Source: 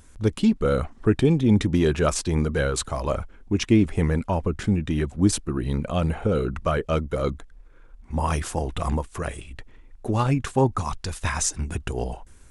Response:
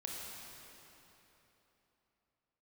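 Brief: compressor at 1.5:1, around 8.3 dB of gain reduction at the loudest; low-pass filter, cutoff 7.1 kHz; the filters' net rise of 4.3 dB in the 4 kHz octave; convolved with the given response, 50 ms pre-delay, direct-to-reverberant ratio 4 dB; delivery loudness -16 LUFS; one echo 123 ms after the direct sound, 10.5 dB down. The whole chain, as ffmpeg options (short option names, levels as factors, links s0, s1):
-filter_complex "[0:a]lowpass=7100,equalizer=f=4000:t=o:g=6,acompressor=threshold=0.0141:ratio=1.5,aecho=1:1:123:0.299,asplit=2[s0][s1];[1:a]atrim=start_sample=2205,adelay=50[s2];[s1][s2]afir=irnorm=-1:irlink=0,volume=0.631[s3];[s0][s3]amix=inputs=2:normalize=0,volume=4.47"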